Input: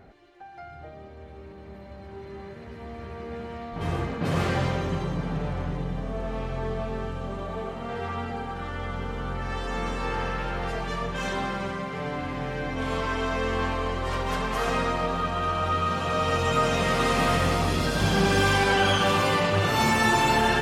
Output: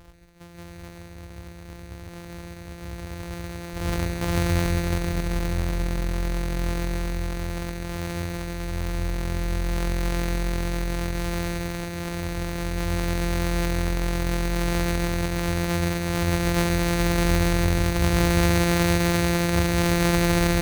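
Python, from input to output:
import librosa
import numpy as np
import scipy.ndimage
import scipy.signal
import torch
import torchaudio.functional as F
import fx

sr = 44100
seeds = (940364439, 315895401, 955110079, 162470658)

y = np.r_[np.sort(x[:len(x) // 256 * 256].reshape(-1, 256), axis=1).ravel(), x[len(x) // 256 * 256:]]
y = fx.low_shelf_res(y, sr, hz=110.0, db=7.0, q=1.5)
y = y + 10.0 ** (-9.0 / 20.0) * np.pad(y, (int(134 * sr / 1000.0), 0))[:len(y)]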